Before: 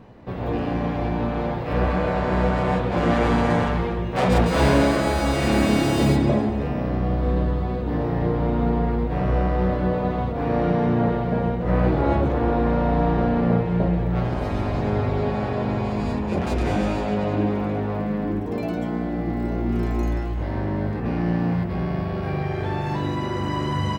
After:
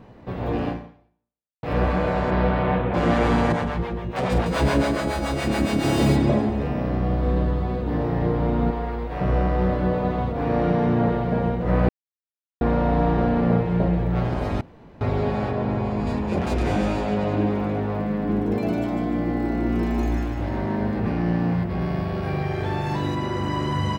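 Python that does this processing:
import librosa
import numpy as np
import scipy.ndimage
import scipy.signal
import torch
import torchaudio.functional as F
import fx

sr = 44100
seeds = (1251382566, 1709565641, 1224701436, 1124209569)

y = fx.lowpass(x, sr, hz=fx.line((2.3, 5100.0), (2.93, 2900.0)), slope=24, at=(2.3, 2.93), fade=0.02)
y = fx.harmonic_tremolo(y, sr, hz=7.1, depth_pct=70, crossover_hz=520.0, at=(3.52, 5.84))
y = fx.peak_eq(y, sr, hz=150.0, db=-11.0, octaves=2.5, at=(8.7, 9.21))
y = fx.high_shelf(y, sr, hz=2800.0, db=-8.0, at=(15.51, 16.07))
y = fx.echo_feedback(y, sr, ms=150, feedback_pct=42, wet_db=-3.5, at=(18.14, 21.12))
y = fx.high_shelf(y, sr, hz=4300.0, db=5.0, at=(21.81, 23.15))
y = fx.edit(y, sr, fx.fade_out_span(start_s=0.69, length_s=0.94, curve='exp'),
    fx.silence(start_s=11.89, length_s=0.72),
    fx.room_tone_fill(start_s=14.61, length_s=0.4), tone=tone)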